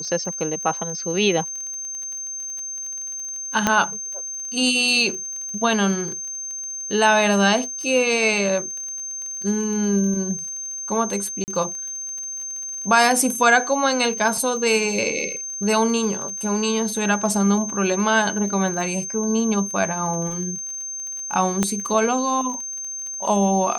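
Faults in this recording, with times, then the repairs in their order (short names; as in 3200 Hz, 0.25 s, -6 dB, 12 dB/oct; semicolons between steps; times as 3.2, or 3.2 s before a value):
crackle 30/s -30 dBFS
tone 6300 Hz -28 dBFS
3.67 pop -3 dBFS
11.44–11.48 gap 39 ms
21.63 pop -6 dBFS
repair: de-click; notch 6300 Hz, Q 30; interpolate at 11.44, 39 ms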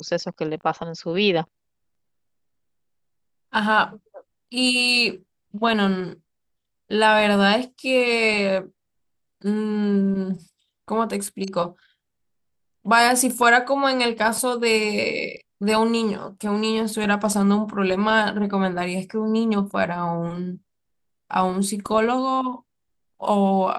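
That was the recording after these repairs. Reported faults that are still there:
none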